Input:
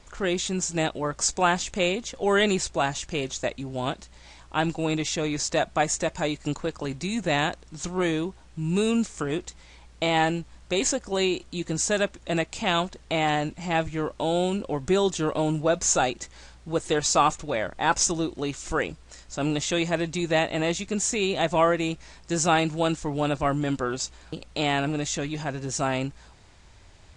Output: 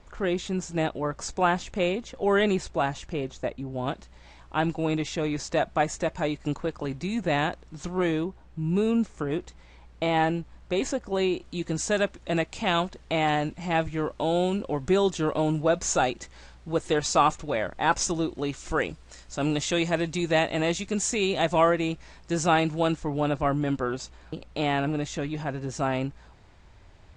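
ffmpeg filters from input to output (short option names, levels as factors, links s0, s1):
-af "asetnsamples=n=441:p=0,asendcmd='3.13 lowpass f 1000;3.88 lowpass f 2300;8.24 lowpass f 1200;9.31 lowpass f 1800;11.44 lowpass f 4000;18.77 lowpass f 8200;21.7 lowpass f 3500;22.94 lowpass f 2100',lowpass=f=1800:p=1"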